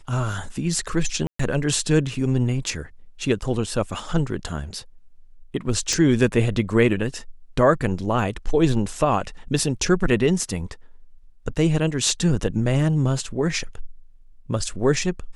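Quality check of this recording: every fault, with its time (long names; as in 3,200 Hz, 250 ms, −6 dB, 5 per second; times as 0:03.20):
0:01.27–0:01.39: drop-out 124 ms
0:05.93: click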